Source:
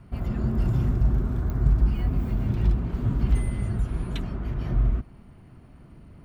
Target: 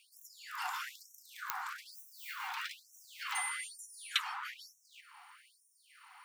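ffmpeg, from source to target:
ffmpeg -i in.wav -af "afftfilt=real='re*gte(b*sr/1024,720*pow(5600/720,0.5+0.5*sin(2*PI*1.1*pts/sr)))':imag='im*gte(b*sr/1024,720*pow(5600/720,0.5+0.5*sin(2*PI*1.1*pts/sr)))':win_size=1024:overlap=0.75,volume=9dB" out.wav

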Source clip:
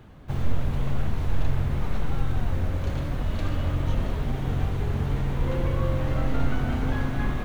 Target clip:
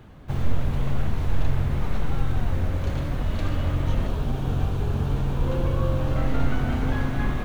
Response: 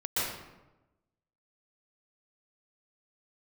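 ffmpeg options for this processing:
-filter_complex "[0:a]asettb=1/sr,asplit=3[link_01][link_02][link_03];[link_01]atrim=end=4.074[link_04];[link_02]atrim=start=4.07:end=6.16,asetpts=PTS-STARTPTS,afade=type=in:duration=0.004:curve=qsin,afade=type=out:start_time=2.086:duration=0.004:curve=qsin,equalizer=frequency=2000:width_type=o:width=0.29:gain=-10[link_05];[link_03]atrim=start=6.156[link_06];[link_04][link_05]acrossfade=duration=0.004:curve1=hsin:curve2=qsin[link_07];[link_07][link_06]acrossfade=duration=0.004:curve1=qsin:curve2=hsin,volume=1.5dB"

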